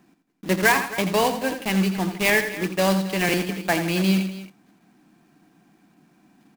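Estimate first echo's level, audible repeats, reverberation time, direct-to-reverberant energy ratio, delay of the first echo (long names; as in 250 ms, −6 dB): −9.5 dB, 3, no reverb audible, no reverb audible, 84 ms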